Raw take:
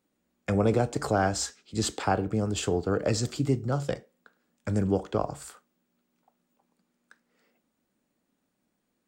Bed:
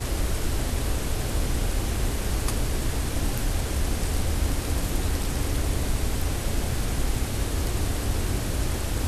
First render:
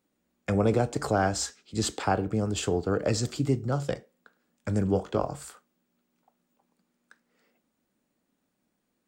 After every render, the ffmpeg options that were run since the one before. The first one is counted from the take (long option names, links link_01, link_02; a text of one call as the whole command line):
ffmpeg -i in.wav -filter_complex "[0:a]asettb=1/sr,asplit=3[link_01][link_02][link_03];[link_01]atrim=end=4.914[link_04];[link_02]atrim=start=4.91:end=5.45,asetpts=PTS-STARTPTS,afade=type=in:duration=0.004:curve=qsin,afade=type=out:start_time=0.536:duration=0.004:curve=qsin,asplit=2[link_05][link_06];[link_06]adelay=22,volume=-8dB[link_07];[link_05][link_07]amix=inputs=2:normalize=0,atrim=end_sample=23814[link_08];[link_03]atrim=start=5.446[link_09];[link_04][link_08]acrossfade=duration=0.004:curve1=hsin:curve2=qsin[link_10];[link_10][link_09]acrossfade=duration=0.004:curve1=qsin:curve2=hsin" out.wav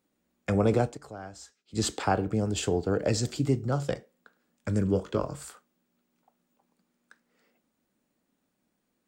ffmpeg -i in.wav -filter_complex "[0:a]asettb=1/sr,asplit=3[link_01][link_02][link_03];[link_01]atrim=end=2.344[link_04];[link_02]atrim=start=2.34:end=3.45,asetpts=PTS-STARTPTS,afade=type=in:duration=0.004:curve=qsin,afade=type=out:start_time=1.106:duration=0.004:curve=qsin,equalizer=frequency=1200:width=4.5:gain=-7[link_05];[link_03]atrim=start=3.446[link_06];[link_04][link_05]acrossfade=duration=0.004:curve1=hsin:curve2=qsin[link_07];[link_07][link_06]acrossfade=duration=0.004:curve1=qsin:curve2=hsin,asettb=1/sr,asplit=3[link_08][link_09][link_10];[link_08]atrim=end=4.684[link_11];[link_09]atrim=start=4.68:end=5.39,asetpts=PTS-STARTPTS,afade=type=in:duration=0.004:curve=qsin,afade=type=out:start_time=0.706:duration=0.004:curve=qsin,equalizer=frequency=760:width_type=o:width=0.33:gain=-11.5[link_12];[link_10]atrim=start=5.386[link_13];[link_11][link_12]acrossfade=duration=0.004:curve1=hsin:curve2=qsin[link_14];[link_14][link_13]acrossfade=duration=0.004:curve1=qsin:curve2=hsin,asplit=3[link_15][link_16][link_17];[link_15]atrim=end=0.98,asetpts=PTS-STARTPTS,afade=type=out:start_time=0.84:duration=0.14:silence=0.141254[link_18];[link_16]atrim=start=0.98:end=1.65,asetpts=PTS-STARTPTS,volume=-17dB[link_19];[link_17]atrim=start=1.65,asetpts=PTS-STARTPTS,afade=type=in:duration=0.14:silence=0.141254[link_20];[link_18][link_19][link_20]concat=n=3:v=0:a=1" out.wav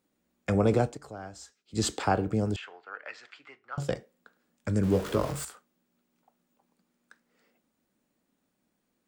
ffmpeg -i in.wav -filter_complex "[0:a]asettb=1/sr,asplit=3[link_01][link_02][link_03];[link_01]atrim=end=2.564[link_04];[link_02]atrim=start=2.56:end=3.78,asetpts=PTS-STARTPTS,afade=type=in:duration=0.004:curve=qsin,afade=type=out:start_time=1.216:duration=0.004:curve=qsin,asuperpass=centerf=1700:order=4:qfactor=1.2[link_05];[link_03]atrim=start=3.776[link_06];[link_04][link_05]acrossfade=duration=0.004:curve1=hsin:curve2=qsin[link_07];[link_07][link_06]acrossfade=duration=0.004:curve1=qsin:curve2=hsin,asettb=1/sr,asplit=3[link_08][link_09][link_10];[link_08]atrim=end=4.834[link_11];[link_09]atrim=start=4.83:end=5.45,asetpts=PTS-STARTPTS,afade=type=in:duration=0.004:curve=qsin,afade=type=out:start_time=0.616:duration=0.004:curve=qsin,aeval=exprs='val(0)+0.5*0.02*sgn(val(0))':channel_layout=same[link_12];[link_10]atrim=start=5.446[link_13];[link_11][link_12]acrossfade=duration=0.004:curve1=hsin:curve2=qsin[link_14];[link_14][link_13]acrossfade=duration=0.004:curve1=qsin:curve2=hsin" out.wav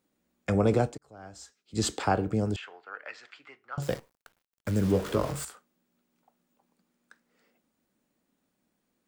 ffmpeg -i in.wav -filter_complex "[0:a]asettb=1/sr,asplit=3[link_01][link_02][link_03];[link_01]atrim=end=3.824[link_04];[link_02]atrim=start=3.82:end=4.92,asetpts=PTS-STARTPTS,afade=type=in:duration=0.004:curve=qsin,afade=type=out:start_time=1.096:duration=0.004:curve=qsin,acrusher=bits=8:dc=4:mix=0:aa=0.000001[link_05];[link_03]atrim=start=4.916[link_06];[link_04][link_05]acrossfade=duration=0.004:curve1=hsin:curve2=qsin[link_07];[link_07][link_06]acrossfade=duration=0.004:curve1=qsin:curve2=hsin,asplit=2[link_08][link_09];[link_08]atrim=end=0.98,asetpts=PTS-STARTPTS,afade=type=out:start_time=0.976:duration=0.004:curve=hsin[link_10];[link_09]atrim=start=0.98,asetpts=PTS-STARTPTS,afade=type=in:duration=0.42[link_11];[link_10][link_11]concat=n=2:v=0:a=1" out.wav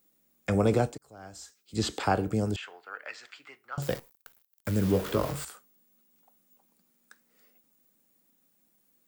ffmpeg -i in.wav -filter_complex "[0:a]acrossover=split=4500[link_01][link_02];[link_02]acompressor=threshold=-53dB:ratio=4:attack=1:release=60[link_03];[link_01][link_03]amix=inputs=2:normalize=0,aemphasis=mode=production:type=50fm" out.wav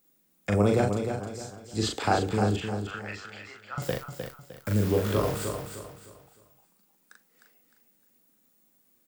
ffmpeg -i in.wav -filter_complex "[0:a]asplit=2[link_01][link_02];[link_02]adelay=39,volume=-3dB[link_03];[link_01][link_03]amix=inputs=2:normalize=0,asplit=2[link_04][link_05];[link_05]aecho=0:1:306|612|918|1224:0.447|0.152|0.0516|0.0176[link_06];[link_04][link_06]amix=inputs=2:normalize=0" out.wav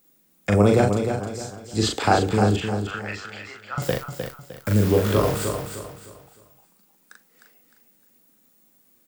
ffmpeg -i in.wav -af "volume=6dB" out.wav